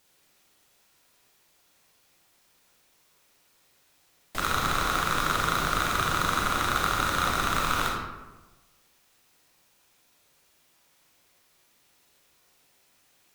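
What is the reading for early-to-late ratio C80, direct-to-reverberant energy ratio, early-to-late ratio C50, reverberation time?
3.5 dB, -2.0 dB, 1.0 dB, 1.2 s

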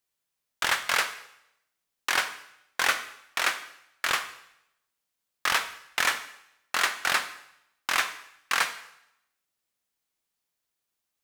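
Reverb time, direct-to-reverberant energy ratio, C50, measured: 0.80 s, 11.5 dB, 12.0 dB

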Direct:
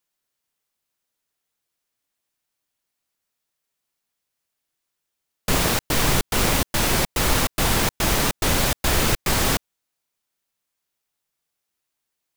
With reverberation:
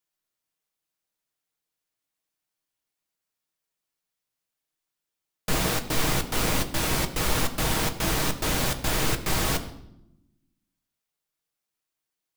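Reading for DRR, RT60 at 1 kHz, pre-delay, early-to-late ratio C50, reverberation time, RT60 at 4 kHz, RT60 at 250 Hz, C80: 6.0 dB, 0.75 s, 6 ms, 13.5 dB, 0.85 s, 0.65 s, 1.4 s, 15.0 dB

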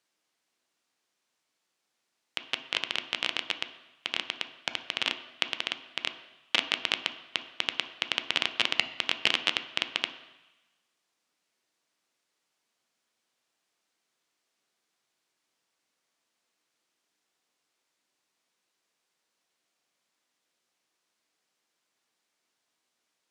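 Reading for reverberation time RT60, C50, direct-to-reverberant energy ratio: 1.1 s, 11.5 dB, 8.0 dB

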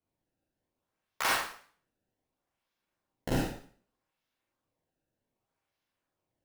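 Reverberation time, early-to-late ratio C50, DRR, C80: 0.50 s, -0.5 dB, -4.5 dB, 6.0 dB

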